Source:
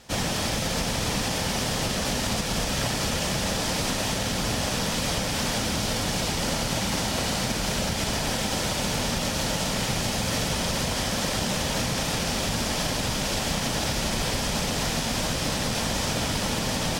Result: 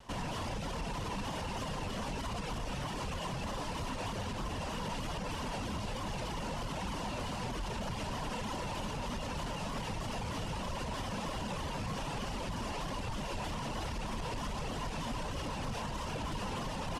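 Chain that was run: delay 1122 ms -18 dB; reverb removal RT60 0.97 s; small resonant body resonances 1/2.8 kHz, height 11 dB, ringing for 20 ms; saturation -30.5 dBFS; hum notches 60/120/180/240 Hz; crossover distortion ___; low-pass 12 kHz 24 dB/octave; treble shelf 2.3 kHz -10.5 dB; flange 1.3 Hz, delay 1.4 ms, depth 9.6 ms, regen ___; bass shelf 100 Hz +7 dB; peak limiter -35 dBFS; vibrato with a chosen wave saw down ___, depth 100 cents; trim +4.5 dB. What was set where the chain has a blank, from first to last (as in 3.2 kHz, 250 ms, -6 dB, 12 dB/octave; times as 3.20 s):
-58.5 dBFS, -62%, 3.2 Hz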